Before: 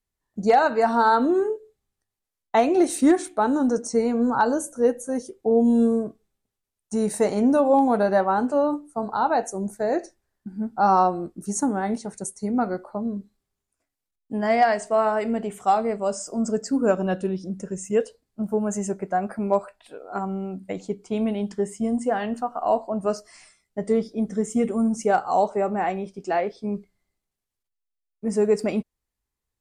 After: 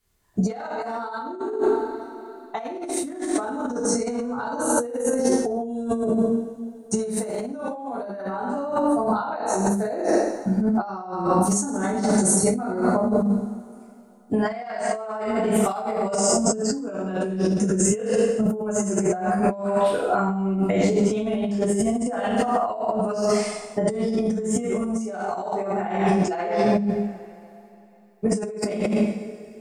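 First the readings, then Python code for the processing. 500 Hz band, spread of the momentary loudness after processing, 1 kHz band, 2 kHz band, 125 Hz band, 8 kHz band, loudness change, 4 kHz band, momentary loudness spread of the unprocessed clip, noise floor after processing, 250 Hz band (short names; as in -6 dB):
0.0 dB, 10 LU, -3.5 dB, -2.0 dB, +6.5 dB, +8.5 dB, -0.5 dB, +4.0 dB, 13 LU, -46 dBFS, +1.0 dB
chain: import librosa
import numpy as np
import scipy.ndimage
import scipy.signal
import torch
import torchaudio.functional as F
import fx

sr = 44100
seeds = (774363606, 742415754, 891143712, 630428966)

y = fx.rev_double_slope(x, sr, seeds[0], early_s=0.91, late_s=3.3, knee_db=-27, drr_db=-7.5)
y = fx.over_compress(y, sr, threshold_db=-25.0, ratio=-1.0)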